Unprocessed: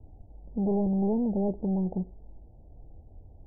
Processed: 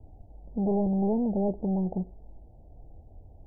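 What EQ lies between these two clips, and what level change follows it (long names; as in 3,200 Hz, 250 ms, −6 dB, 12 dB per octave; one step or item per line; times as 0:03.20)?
parametric band 690 Hz +4 dB 0.62 octaves
0.0 dB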